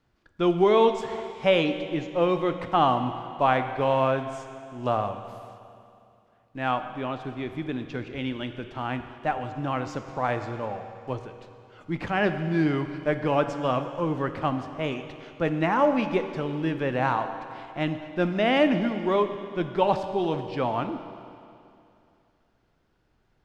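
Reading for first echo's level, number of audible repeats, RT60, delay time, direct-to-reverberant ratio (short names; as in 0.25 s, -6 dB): none, none, 2.6 s, none, 8.0 dB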